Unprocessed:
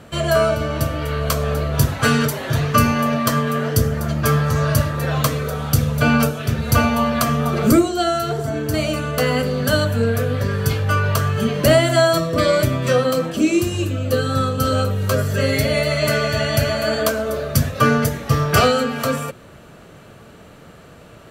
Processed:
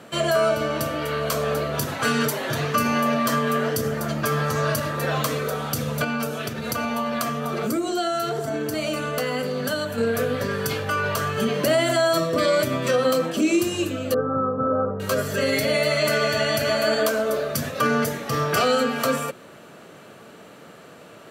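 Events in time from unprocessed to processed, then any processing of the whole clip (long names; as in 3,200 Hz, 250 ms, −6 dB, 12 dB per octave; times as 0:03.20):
0:06.04–0:09.98: downward compressor, threshold −20 dBFS
0:14.14–0:15.00: Chebyshev low-pass filter 1,300 Hz, order 4
whole clip: brickwall limiter −11 dBFS; high-pass filter 210 Hz 12 dB per octave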